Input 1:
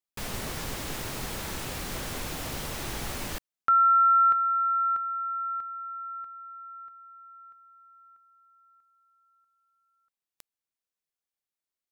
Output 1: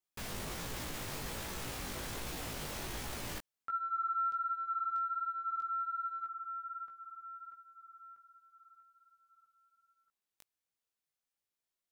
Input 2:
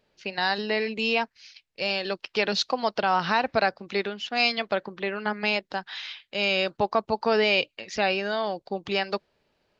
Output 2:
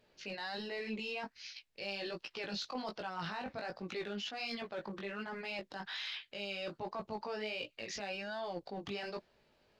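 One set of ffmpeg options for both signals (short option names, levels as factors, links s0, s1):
-af "areverse,acompressor=threshold=0.0178:ratio=6:attack=0.17:release=55:knee=1:detection=peak,areverse,flanger=delay=16.5:depth=3.6:speed=1.3,volume=1.41"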